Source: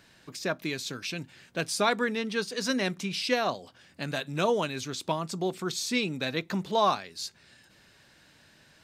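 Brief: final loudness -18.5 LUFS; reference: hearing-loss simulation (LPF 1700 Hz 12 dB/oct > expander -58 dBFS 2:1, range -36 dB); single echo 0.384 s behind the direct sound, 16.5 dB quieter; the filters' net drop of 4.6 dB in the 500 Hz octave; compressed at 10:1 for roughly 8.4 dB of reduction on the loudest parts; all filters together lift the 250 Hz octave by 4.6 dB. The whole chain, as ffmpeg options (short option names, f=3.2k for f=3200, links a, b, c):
-af "equalizer=f=250:t=o:g=7.5,equalizer=f=500:t=o:g=-8,acompressor=threshold=-29dB:ratio=10,lowpass=1.7k,aecho=1:1:384:0.15,agate=range=-36dB:threshold=-58dB:ratio=2,volume=17.5dB"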